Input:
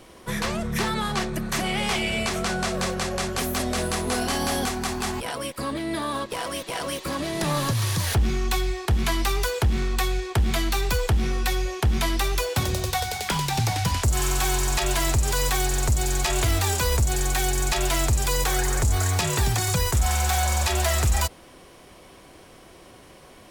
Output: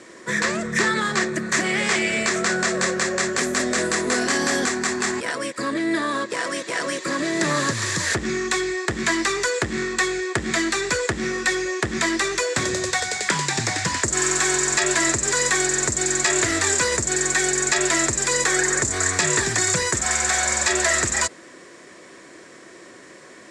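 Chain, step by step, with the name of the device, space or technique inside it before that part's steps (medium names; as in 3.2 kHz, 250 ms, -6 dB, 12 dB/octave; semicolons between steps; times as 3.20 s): full-range speaker at full volume (loudspeaker Doppler distortion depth 0.17 ms; cabinet simulation 210–8300 Hz, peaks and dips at 340 Hz +4 dB, 800 Hz -9 dB, 1.8 kHz +10 dB, 3 kHz -7 dB, 7.4 kHz +10 dB); trim +4 dB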